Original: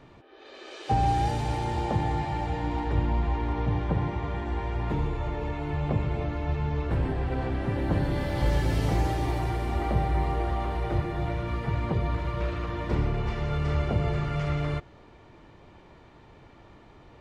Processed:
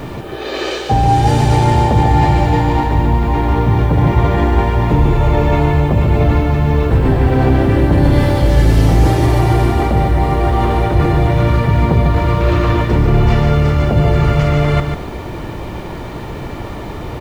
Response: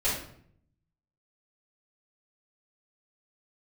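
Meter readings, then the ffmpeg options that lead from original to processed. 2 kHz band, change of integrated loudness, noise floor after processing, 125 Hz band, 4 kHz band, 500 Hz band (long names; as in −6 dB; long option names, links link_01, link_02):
+14.5 dB, +15.5 dB, −26 dBFS, +16.0 dB, +15.0 dB, +16.0 dB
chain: -filter_complex "[0:a]equalizer=frequency=2100:width=0.32:gain=-3.5,areverse,acompressor=threshold=-35dB:ratio=8,areverse,apsyclip=32dB,asplit=2[link_01][link_02];[link_02]aecho=0:1:145|290|435:0.473|0.0899|0.0171[link_03];[link_01][link_03]amix=inputs=2:normalize=0,acrusher=bits=6:mix=0:aa=0.000001,aeval=exprs='val(0)+0.0224*(sin(2*PI*60*n/s)+sin(2*PI*2*60*n/s)/2+sin(2*PI*3*60*n/s)/3+sin(2*PI*4*60*n/s)/4+sin(2*PI*5*60*n/s)/5)':channel_layout=same,volume=-5.5dB"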